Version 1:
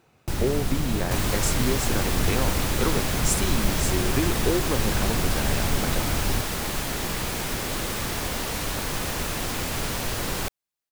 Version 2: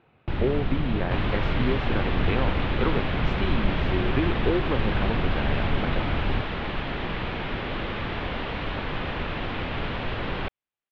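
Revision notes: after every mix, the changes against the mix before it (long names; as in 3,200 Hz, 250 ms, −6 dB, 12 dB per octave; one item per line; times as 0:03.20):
master: add Butterworth low-pass 3,400 Hz 36 dB per octave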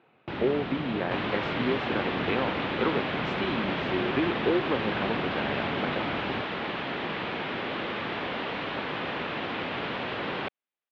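master: add high-pass filter 210 Hz 12 dB per octave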